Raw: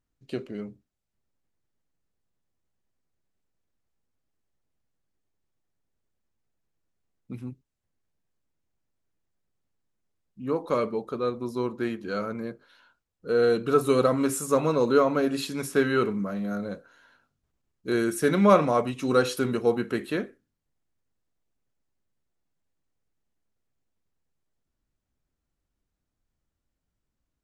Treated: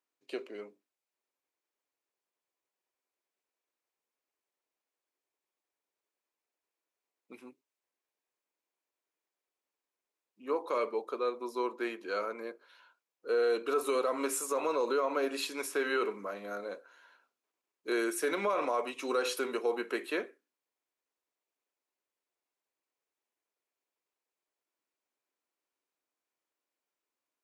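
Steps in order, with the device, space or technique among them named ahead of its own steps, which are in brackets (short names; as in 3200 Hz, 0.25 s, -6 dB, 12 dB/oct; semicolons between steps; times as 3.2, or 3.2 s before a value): laptop speaker (HPF 350 Hz 24 dB/oct; bell 1000 Hz +5 dB 0.26 oct; bell 2400 Hz +5 dB 0.37 oct; limiter -18.5 dBFS, peak gain reduction 14 dB); gain -3 dB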